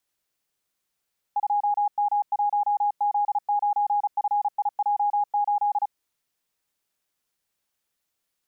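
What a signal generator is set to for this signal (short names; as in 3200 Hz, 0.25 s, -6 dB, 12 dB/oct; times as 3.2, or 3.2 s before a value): Morse "2M1Z9FIJ8" 35 wpm 824 Hz -19.5 dBFS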